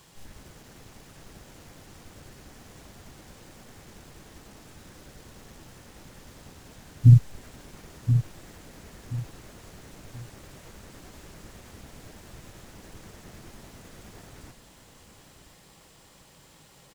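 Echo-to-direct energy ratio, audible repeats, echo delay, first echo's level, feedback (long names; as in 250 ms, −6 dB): −8.5 dB, 3, 1,029 ms, −9.0 dB, 30%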